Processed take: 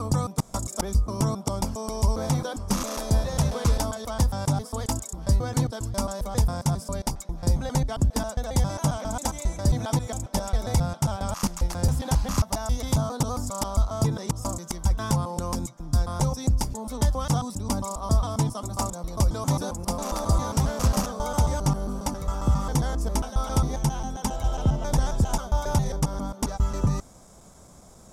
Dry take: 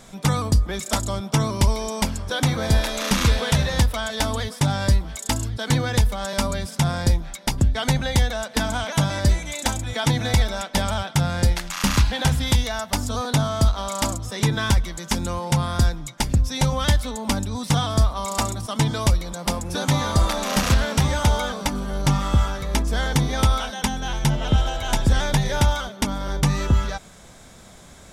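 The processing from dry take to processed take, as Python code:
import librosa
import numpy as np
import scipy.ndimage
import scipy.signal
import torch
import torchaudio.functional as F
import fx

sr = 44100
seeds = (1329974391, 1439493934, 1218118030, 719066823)

y = fx.block_reorder(x, sr, ms=135.0, group=4)
y = fx.band_shelf(y, sr, hz=2500.0, db=-11.0, octaves=1.7)
y = y * 10.0 ** (-3.5 / 20.0)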